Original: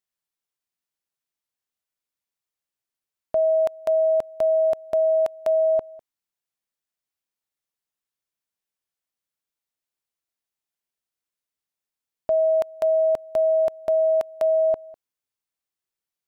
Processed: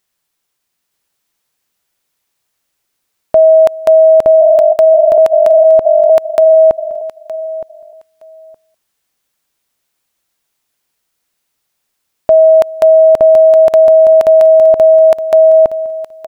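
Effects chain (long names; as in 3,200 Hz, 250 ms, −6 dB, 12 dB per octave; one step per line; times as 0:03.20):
0:04.27–0:05.18: three sine waves on the formant tracks
repeating echo 917 ms, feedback 16%, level −3 dB
boost into a limiter +18.5 dB
level −1 dB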